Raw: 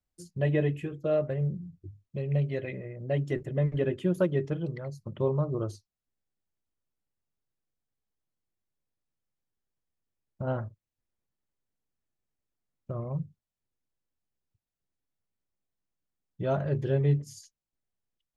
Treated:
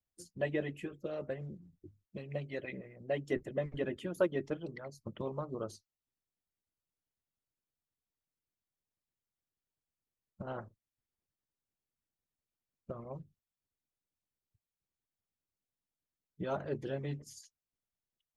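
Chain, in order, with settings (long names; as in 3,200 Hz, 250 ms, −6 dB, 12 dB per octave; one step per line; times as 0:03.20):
harmonic and percussive parts rebalanced harmonic −15 dB
level −1 dB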